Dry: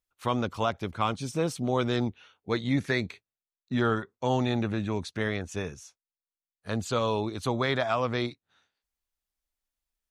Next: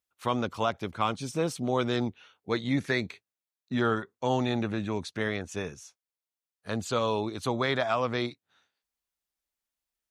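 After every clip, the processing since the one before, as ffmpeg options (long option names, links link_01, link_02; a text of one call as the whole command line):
ffmpeg -i in.wav -af "highpass=frequency=120:poles=1" out.wav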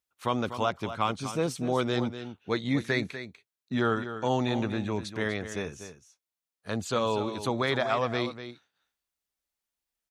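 ffmpeg -i in.wav -af "aecho=1:1:245:0.282" out.wav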